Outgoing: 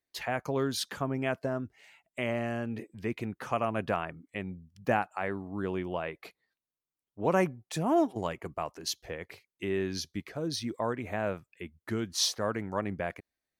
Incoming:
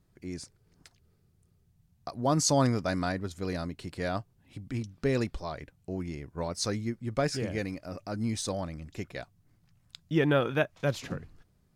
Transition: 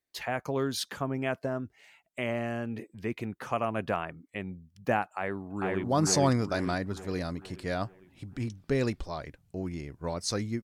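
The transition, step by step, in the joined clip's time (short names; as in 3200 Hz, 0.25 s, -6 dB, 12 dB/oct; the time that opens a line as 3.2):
outgoing
5.05–5.84 echo throw 0.45 s, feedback 50%, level -1 dB
5.84 switch to incoming from 2.18 s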